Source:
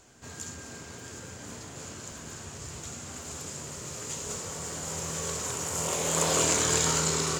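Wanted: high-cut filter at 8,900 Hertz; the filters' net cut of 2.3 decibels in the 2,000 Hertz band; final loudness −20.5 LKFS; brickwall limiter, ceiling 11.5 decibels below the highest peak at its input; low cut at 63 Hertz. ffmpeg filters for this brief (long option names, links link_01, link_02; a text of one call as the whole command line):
ffmpeg -i in.wav -af "highpass=63,lowpass=8900,equalizer=frequency=2000:width_type=o:gain=-3,volume=14.5dB,alimiter=limit=-8dB:level=0:latency=1" out.wav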